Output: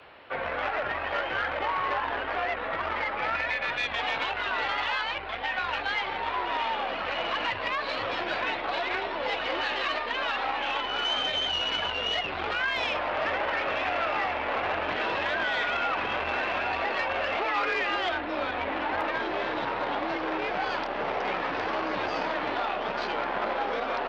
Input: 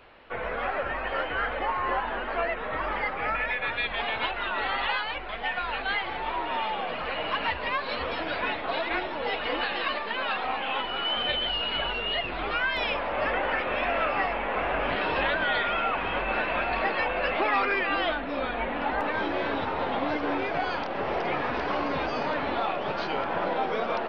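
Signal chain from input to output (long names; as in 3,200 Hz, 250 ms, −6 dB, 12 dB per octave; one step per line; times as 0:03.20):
brickwall limiter −20.5 dBFS, peak gain reduction 7 dB
frequency shifter +33 Hz
low-shelf EQ 110 Hz −11.5 dB
saturating transformer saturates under 1,400 Hz
level +3 dB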